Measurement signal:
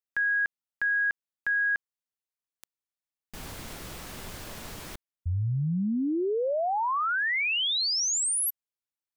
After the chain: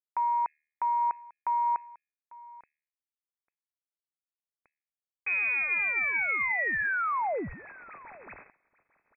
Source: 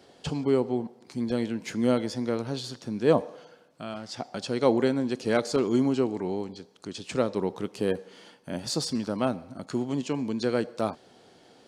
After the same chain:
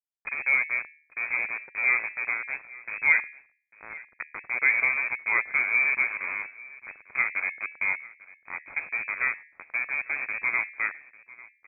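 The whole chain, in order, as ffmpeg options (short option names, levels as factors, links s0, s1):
-filter_complex "[0:a]aeval=exprs='val(0)*gte(abs(val(0)),0.0422)':c=same,bandreject=f=76.48:t=h:w=4,bandreject=f=152.96:t=h:w=4,bandreject=f=229.44:t=h:w=4,bandreject=f=305.92:t=h:w=4,bandreject=f=382.4:t=h:w=4,bandreject=f=458.88:t=h:w=4,bandreject=f=535.36:t=h:w=4,bandreject=f=611.84:t=h:w=4,bandreject=f=688.32:t=h:w=4,bandreject=f=764.8:t=h:w=4,bandreject=f=841.28:t=h:w=4,bandreject=f=917.76:t=h:w=4,asplit=2[s0][s1];[s1]aecho=0:1:847:0.0891[s2];[s0][s2]amix=inputs=2:normalize=0,lowpass=f=2200:t=q:w=0.5098,lowpass=f=2200:t=q:w=0.6013,lowpass=f=2200:t=q:w=0.9,lowpass=f=2200:t=q:w=2.563,afreqshift=-2600"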